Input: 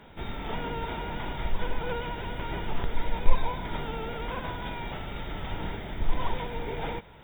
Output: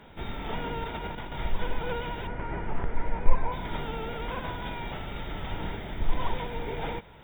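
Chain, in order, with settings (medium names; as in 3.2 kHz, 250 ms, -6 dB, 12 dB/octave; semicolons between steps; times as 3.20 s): 0.84–1.32 s: compressor with a negative ratio -35 dBFS, ratio -0.5; 2.27–3.52 s: low-pass 2.2 kHz 24 dB/octave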